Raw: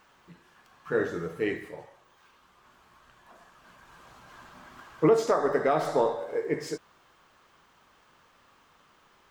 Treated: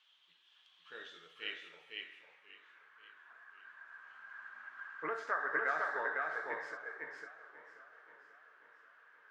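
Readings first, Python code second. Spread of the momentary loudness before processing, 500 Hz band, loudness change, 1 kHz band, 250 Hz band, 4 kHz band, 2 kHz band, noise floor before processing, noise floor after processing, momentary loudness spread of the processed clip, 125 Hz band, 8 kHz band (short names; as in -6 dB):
15 LU, -19.0 dB, -12.0 dB, -8.0 dB, -24.0 dB, -2.0 dB, +2.0 dB, -62 dBFS, -69 dBFS, 23 LU, under -30 dB, under -20 dB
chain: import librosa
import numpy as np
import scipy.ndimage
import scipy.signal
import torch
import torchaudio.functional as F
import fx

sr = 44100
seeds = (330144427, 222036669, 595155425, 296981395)

y = fx.filter_sweep_bandpass(x, sr, from_hz=3300.0, to_hz=1600.0, start_s=1.24, end_s=2.82, q=7.2)
y = y + 10.0 ** (-3.0 / 20.0) * np.pad(y, (int(504 * sr / 1000.0), 0))[:len(y)]
y = fx.echo_warbled(y, sr, ms=535, feedback_pct=56, rate_hz=2.8, cents=129, wet_db=-15.5)
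y = F.gain(torch.from_numpy(y), 6.0).numpy()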